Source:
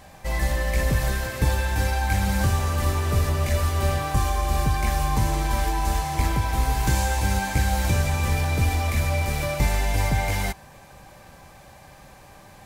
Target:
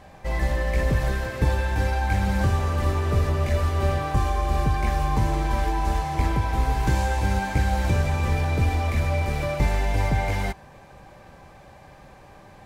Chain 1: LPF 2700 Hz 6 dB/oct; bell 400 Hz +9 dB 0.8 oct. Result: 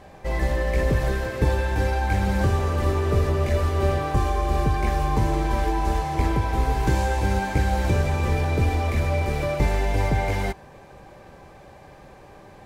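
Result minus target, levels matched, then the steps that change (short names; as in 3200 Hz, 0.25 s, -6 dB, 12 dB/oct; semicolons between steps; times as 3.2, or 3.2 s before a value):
500 Hz band +3.0 dB
change: bell 400 Hz +3 dB 0.8 oct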